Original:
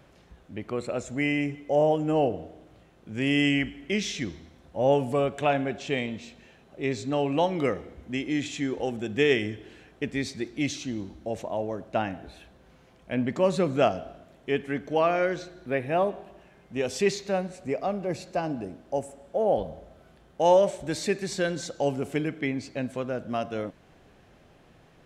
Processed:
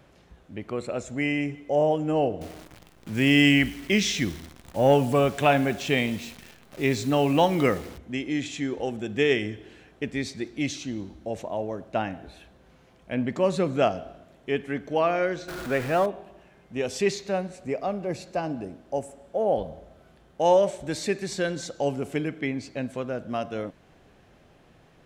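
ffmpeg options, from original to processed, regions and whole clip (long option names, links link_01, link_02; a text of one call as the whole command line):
ffmpeg -i in.wav -filter_complex "[0:a]asettb=1/sr,asplit=3[link_01][link_02][link_03];[link_01]atrim=end=2.414[link_04];[link_02]atrim=start=2.41:end=7.98,asetpts=PTS-STARTPTS,afade=type=in:duration=0.004:curve=qsin,afade=type=out:start_time=5.566:duration=0.004:curve=qsin,acontrast=58,acrusher=bits=8:dc=4:mix=0:aa=0.000001,equalizer=frequency=500:width=1.1:gain=-3.5[link_05];[link_03]atrim=start=7.976[link_06];[link_04][link_05]acrossfade=duration=0.004:curve1=hsin:curve2=qsin[link_07];[link_07][link_06]acrossfade=duration=0.004:curve1=qsin:curve2=hsin,asettb=1/sr,asplit=3[link_08][link_09][link_10];[link_08]atrim=end=15.484[link_11];[link_09]atrim=start=15.48:end=16.06,asetpts=PTS-STARTPTS,afade=type=in:duration=0.004:curve=qsin,afade=type=out:start_time=0.576:duration=0.004:curve=qsin,aeval=exprs='val(0)+0.5*0.0251*sgn(val(0))':channel_layout=same,equalizer=frequency=1400:width_type=o:width=0.35:gain=8[link_12];[link_10]atrim=start=16.056[link_13];[link_11][link_12]acrossfade=duration=0.004:curve1=hsin:curve2=qsin[link_14];[link_14][link_13]acrossfade=duration=0.004:curve1=qsin:curve2=hsin" out.wav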